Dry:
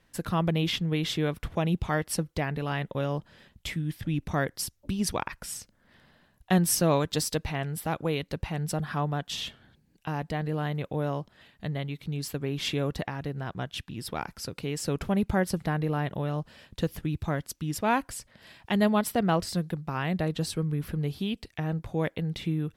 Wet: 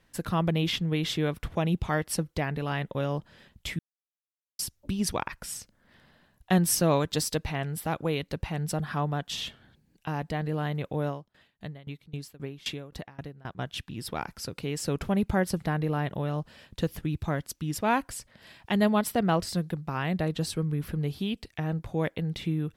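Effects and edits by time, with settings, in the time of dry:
3.79–4.59 mute
11.08–13.59 dB-ramp tremolo decaying 3.8 Hz, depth 22 dB

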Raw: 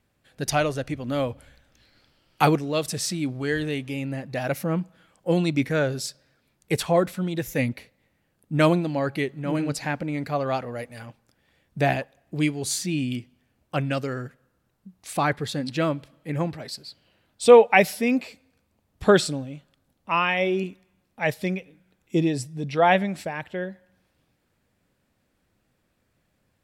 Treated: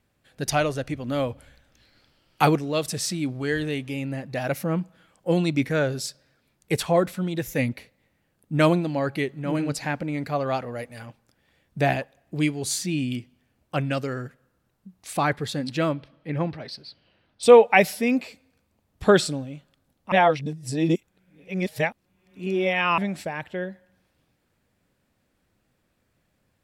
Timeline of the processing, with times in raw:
15.93–17.43 polynomial smoothing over 15 samples
20.12–22.98 reverse

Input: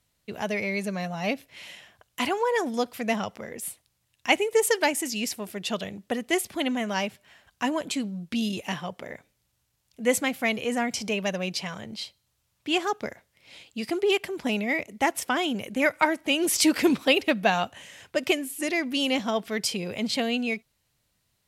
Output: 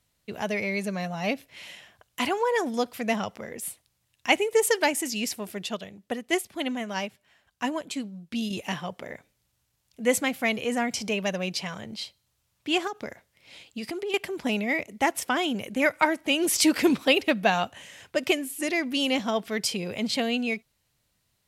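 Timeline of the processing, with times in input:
5.66–8.51 upward expander, over -36 dBFS
12.87–14.14 compressor, threshold -29 dBFS

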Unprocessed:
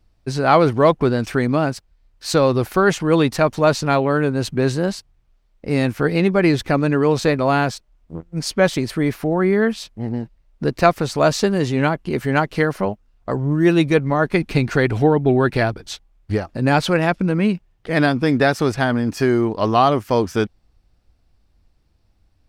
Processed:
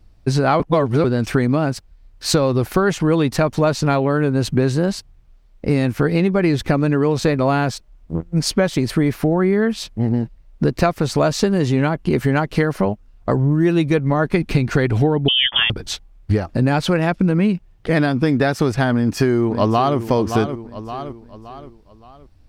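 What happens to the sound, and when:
0.6–1.04 reverse
15.28–15.7 inverted band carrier 3400 Hz
18.93–19.98 echo throw 0.57 s, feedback 40%, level -12.5 dB
whole clip: low shelf 320 Hz +5 dB; compressor, threshold -18 dBFS; gain +5 dB

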